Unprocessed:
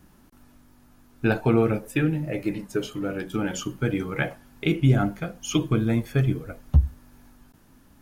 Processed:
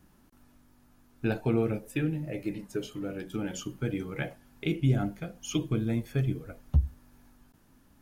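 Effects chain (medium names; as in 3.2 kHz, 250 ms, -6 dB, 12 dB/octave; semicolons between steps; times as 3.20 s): dynamic bell 1.2 kHz, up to -6 dB, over -42 dBFS, Q 1.1; trim -6 dB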